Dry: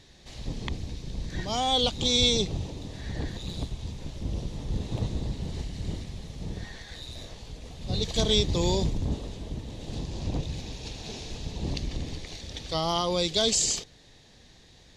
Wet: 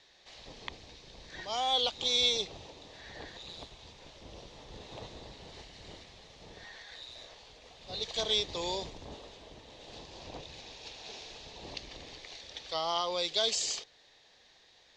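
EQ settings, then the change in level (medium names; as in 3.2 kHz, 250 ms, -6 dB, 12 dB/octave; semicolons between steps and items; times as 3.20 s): three-band isolator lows -19 dB, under 450 Hz, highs -21 dB, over 6.5 kHz; -3.0 dB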